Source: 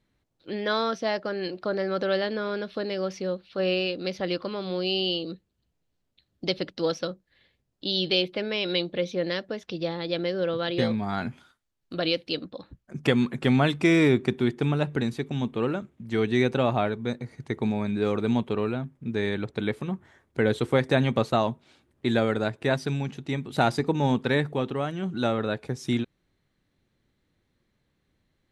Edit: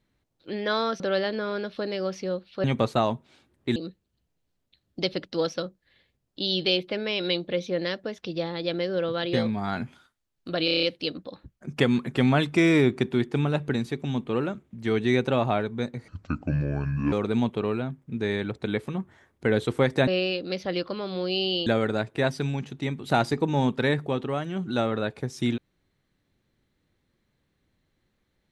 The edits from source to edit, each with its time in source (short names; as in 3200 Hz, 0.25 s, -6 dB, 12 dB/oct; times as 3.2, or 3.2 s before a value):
1–1.98 cut
3.62–5.21 swap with 21.01–22.13
12.1 stutter 0.03 s, 7 plays
17.35–18.06 speed 68%